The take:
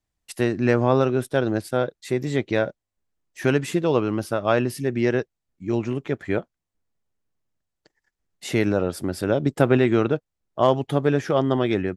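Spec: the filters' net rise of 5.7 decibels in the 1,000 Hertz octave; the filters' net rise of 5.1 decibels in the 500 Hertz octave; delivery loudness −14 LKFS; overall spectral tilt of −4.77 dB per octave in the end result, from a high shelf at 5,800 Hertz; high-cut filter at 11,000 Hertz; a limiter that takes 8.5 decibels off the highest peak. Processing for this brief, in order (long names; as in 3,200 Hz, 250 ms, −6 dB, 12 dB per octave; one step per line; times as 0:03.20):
low-pass filter 11,000 Hz
parametric band 500 Hz +5 dB
parametric band 1,000 Hz +6 dB
high-shelf EQ 5,800 Hz −8 dB
level +7.5 dB
brickwall limiter 0 dBFS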